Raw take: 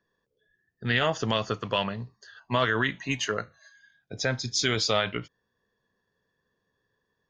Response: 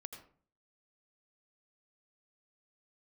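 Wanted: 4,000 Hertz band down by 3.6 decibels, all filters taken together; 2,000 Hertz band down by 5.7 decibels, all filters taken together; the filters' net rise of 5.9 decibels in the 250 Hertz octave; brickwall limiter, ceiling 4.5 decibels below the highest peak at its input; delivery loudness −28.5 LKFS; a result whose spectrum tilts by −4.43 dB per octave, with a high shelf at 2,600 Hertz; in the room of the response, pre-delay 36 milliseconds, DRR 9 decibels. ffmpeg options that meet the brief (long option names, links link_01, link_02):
-filter_complex "[0:a]equalizer=frequency=250:width_type=o:gain=7,equalizer=frequency=2000:width_type=o:gain=-8.5,highshelf=frequency=2600:gain=6.5,equalizer=frequency=4000:width_type=o:gain=-8,alimiter=limit=-15.5dB:level=0:latency=1,asplit=2[link_01][link_02];[1:a]atrim=start_sample=2205,adelay=36[link_03];[link_02][link_03]afir=irnorm=-1:irlink=0,volume=-5dB[link_04];[link_01][link_04]amix=inputs=2:normalize=0,volume=-0.5dB"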